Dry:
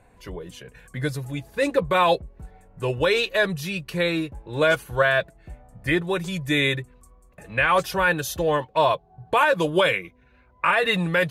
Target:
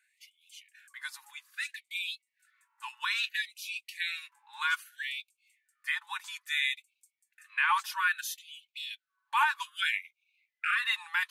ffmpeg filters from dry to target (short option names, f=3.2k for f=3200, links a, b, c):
-af "afftfilt=real='re*gte(b*sr/1024,800*pow(2200/800,0.5+0.5*sin(2*PI*0.61*pts/sr)))':imag='im*gte(b*sr/1024,800*pow(2200/800,0.5+0.5*sin(2*PI*0.61*pts/sr)))':win_size=1024:overlap=0.75,volume=-6dB"